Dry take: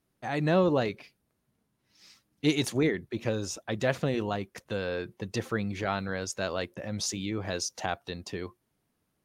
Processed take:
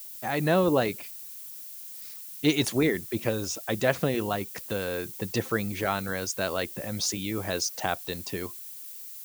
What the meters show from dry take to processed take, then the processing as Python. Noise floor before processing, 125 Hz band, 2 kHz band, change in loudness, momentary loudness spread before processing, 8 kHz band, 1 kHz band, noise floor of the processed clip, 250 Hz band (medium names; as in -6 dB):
-78 dBFS, +0.5 dB, +3.0 dB, +2.0 dB, 10 LU, +4.5 dB, +3.0 dB, -42 dBFS, +1.5 dB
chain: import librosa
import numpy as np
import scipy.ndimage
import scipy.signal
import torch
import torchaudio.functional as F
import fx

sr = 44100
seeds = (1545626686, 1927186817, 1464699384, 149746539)

y = fx.hpss(x, sr, part='percussive', gain_db=4)
y = fx.dmg_noise_colour(y, sr, seeds[0], colour='violet', level_db=-42.0)